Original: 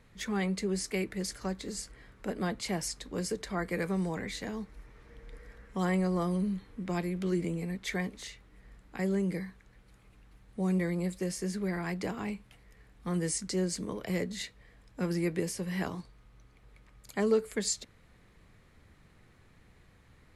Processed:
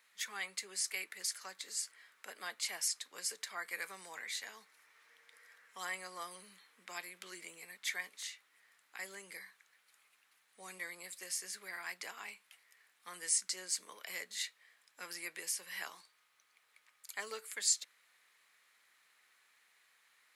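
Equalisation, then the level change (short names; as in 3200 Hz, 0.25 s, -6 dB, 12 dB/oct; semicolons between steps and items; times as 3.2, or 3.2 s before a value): HPF 1400 Hz 12 dB/oct; high shelf 10000 Hz +9.5 dB; -1.0 dB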